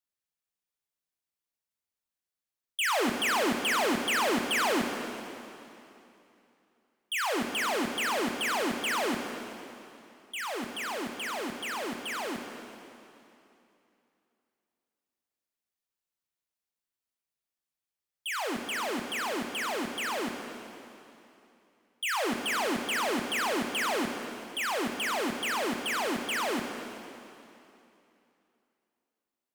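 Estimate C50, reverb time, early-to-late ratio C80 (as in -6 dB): 5.0 dB, 2.9 s, 6.0 dB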